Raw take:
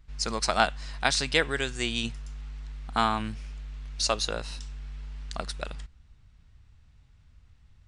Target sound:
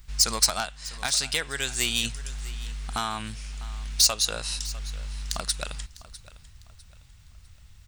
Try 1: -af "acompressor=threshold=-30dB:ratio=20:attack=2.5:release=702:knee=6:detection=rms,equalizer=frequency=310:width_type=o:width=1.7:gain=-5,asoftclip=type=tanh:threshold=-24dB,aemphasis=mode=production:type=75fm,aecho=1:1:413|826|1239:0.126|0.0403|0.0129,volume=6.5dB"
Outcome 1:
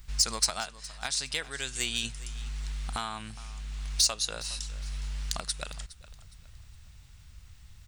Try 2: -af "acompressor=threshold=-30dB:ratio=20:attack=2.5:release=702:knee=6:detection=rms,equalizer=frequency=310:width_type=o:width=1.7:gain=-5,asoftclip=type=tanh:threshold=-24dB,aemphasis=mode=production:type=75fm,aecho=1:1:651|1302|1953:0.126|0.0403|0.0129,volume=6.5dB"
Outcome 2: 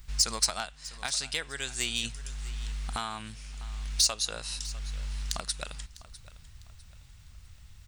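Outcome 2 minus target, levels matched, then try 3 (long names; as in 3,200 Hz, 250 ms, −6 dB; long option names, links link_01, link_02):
downward compressor: peak gain reduction +6.5 dB
-af "acompressor=threshold=-23dB:ratio=20:attack=2.5:release=702:knee=6:detection=rms,equalizer=frequency=310:width_type=o:width=1.7:gain=-5,asoftclip=type=tanh:threshold=-24dB,aemphasis=mode=production:type=75fm,aecho=1:1:651|1302|1953:0.126|0.0403|0.0129,volume=6.5dB"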